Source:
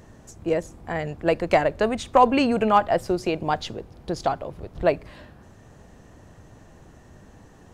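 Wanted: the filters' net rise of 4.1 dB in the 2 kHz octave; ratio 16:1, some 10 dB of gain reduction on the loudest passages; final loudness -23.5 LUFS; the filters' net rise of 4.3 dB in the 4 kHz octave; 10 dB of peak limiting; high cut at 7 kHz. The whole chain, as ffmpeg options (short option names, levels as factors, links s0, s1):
-af "lowpass=7000,equalizer=f=2000:t=o:g=4,equalizer=f=4000:t=o:g=4.5,acompressor=threshold=0.1:ratio=16,volume=2.24,alimiter=limit=0.266:level=0:latency=1"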